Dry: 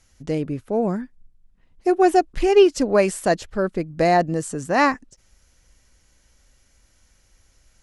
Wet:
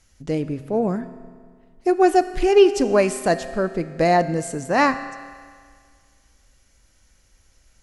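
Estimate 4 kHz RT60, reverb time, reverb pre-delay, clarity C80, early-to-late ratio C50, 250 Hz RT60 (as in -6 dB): 1.7 s, 1.9 s, 8 ms, 13.5 dB, 12.5 dB, 1.9 s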